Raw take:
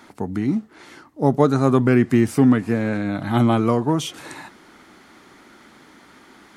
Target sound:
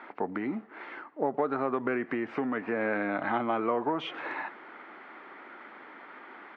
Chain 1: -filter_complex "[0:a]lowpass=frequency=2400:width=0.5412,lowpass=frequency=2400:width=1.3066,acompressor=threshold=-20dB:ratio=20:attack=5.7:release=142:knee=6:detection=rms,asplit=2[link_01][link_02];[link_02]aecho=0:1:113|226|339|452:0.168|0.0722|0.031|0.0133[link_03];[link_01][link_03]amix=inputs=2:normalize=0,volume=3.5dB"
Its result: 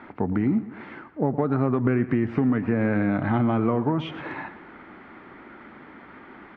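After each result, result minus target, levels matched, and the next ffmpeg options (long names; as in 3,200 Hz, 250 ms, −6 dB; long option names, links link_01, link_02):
echo-to-direct +12 dB; 500 Hz band −4.0 dB
-filter_complex "[0:a]lowpass=frequency=2400:width=0.5412,lowpass=frequency=2400:width=1.3066,acompressor=threshold=-20dB:ratio=20:attack=5.7:release=142:knee=6:detection=rms,asplit=2[link_01][link_02];[link_02]aecho=0:1:113|226:0.0422|0.0181[link_03];[link_01][link_03]amix=inputs=2:normalize=0,volume=3.5dB"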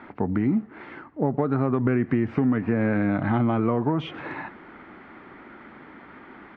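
500 Hz band −4.0 dB
-filter_complex "[0:a]lowpass=frequency=2400:width=0.5412,lowpass=frequency=2400:width=1.3066,acompressor=threshold=-20dB:ratio=20:attack=5.7:release=142:knee=6:detection=rms,highpass=460,asplit=2[link_01][link_02];[link_02]aecho=0:1:113|226:0.0422|0.0181[link_03];[link_01][link_03]amix=inputs=2:normalize=0,volume=3.5dB"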